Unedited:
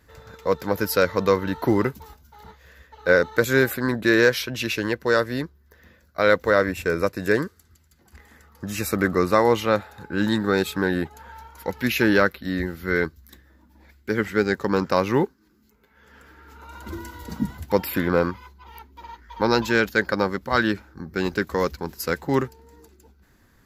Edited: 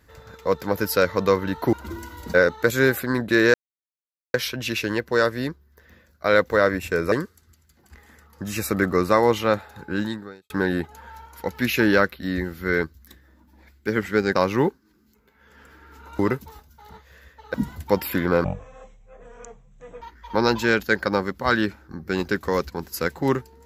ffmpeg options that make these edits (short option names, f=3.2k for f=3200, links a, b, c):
-filter_complex "[0:a]asplit=11[a][b][c][d][e][f][g][h][i][j][k];[a]atrim=end=1.732[l];[b]atrim=start=16.748:end=17.362[m];[c]atrim=start=3.078:end=4.28,asetpts=PTS-STARTPTS,afade=t=out:st=1.198:d=0.004:c=hsin,apad=pad_dur=0.8[n];[d]atrim=start=4.28:end=7.062,asetpts=PTS-STARTPTS,afade=t=in:d=0.004:c=hsin[o];[e]atrim=start=7.338:end=10.72,asetpts=PTS-STARTPTS,afade=t=out:st=2.792:d=0.59:c=qua[p];[f]atrim=start=10.72:end=14.572,asetpts=PTS-STARTPTS,afade=t=in:d=0.004:c=hsin[q];[g]atrim=start=14.908:end=16.752[r];[h]atrim=start=1.728:end=3.082[s];[i]atrim=start=17.358:end=18.264[t];[j]atrim=start=18.26:end=19.08,asetpts=PTS-STARTPTS,asetrate=22932,aresample=44100,atrim=end_sample=69542,asetpts=PTS-STARTPTS[u];[k]atrim=start=19.076[v];[l][m]acrossfade=d=0.004:c1=hsin:c2=hsin[w];[n][o]concat=n=2:v=0:a=1[x];[w][x]acrossfade=d=0.004:c1=hsin:c2=hsin[y];[p][q]concat=n=2:v=0:a=1[z];[y][z]acrossfade=d=0.004:c1=hsin:c2=hsin[aa];[aa][r]acrossfade=d=0.004:c1=hsin:c2=hsin[ab];[ab][s]acrossfade=d=0.004:c1=hsin:c2=hsin[ac];[ac][t]acrossfade=d=0.004:c1=hsin:c2=hsin[ad];[ad][u]acrossfade=d=0.004:c1=hsin:c2=hsin[ae];[ae][v]acrossfade=d=0.004:c1=hsin:c2=hsin"